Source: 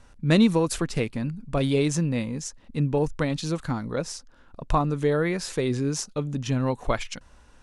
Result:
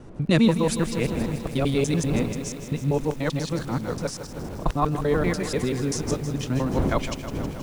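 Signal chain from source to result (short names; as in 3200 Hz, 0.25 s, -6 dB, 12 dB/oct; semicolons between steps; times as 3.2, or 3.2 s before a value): local time reversal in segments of 97 ms; wind noise 290 Hz -34 dBFS; lo-fi delay 0.159 s, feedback 80%, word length 7-bit, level -11 dB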